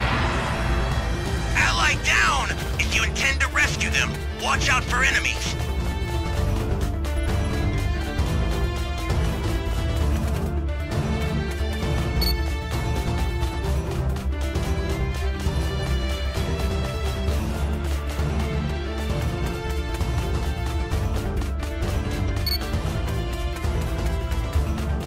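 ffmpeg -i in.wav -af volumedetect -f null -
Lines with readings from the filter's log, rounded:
mean_volume: -23.4 dB
max_volume: -7.0 dB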